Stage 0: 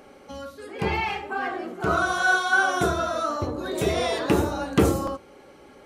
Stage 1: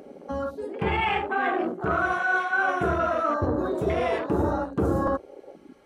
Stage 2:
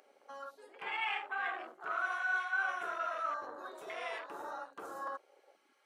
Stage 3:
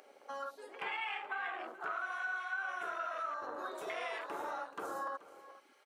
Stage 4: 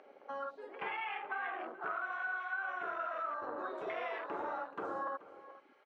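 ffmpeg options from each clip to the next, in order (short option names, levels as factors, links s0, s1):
-af "areverse,acompressor=threshold=0.0355:ratio=8,areverse,afwtdn=0.0112,volume=2.51"
-af "highpass=1100,volume=0.422"
-af "acompressor=threshold=0.00794:ratio=6,aecho=1:1:429:0.141,volume=1.88"
-af "lowpass=2500,lowshelf=f=490:g=5"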